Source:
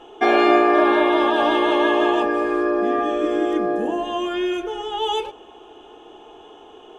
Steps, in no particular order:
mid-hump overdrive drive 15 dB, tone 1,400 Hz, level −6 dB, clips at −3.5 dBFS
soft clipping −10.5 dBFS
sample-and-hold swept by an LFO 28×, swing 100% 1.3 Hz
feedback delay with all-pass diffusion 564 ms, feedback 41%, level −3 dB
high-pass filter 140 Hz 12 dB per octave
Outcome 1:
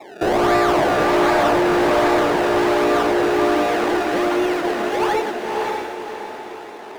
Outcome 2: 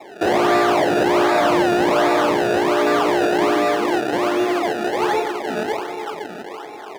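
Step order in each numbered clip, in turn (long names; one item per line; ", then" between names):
sample-and-hold swept by an LFO, then high-pass filter, then mid-hump overdrive, then feedback delay with all-pass diffusion, then soft clipping
feedback delay with all-pass diffusion, then sample-and-hold swept by an LFO, then mid-hump overdrive, then soft clipping, then high-pass filter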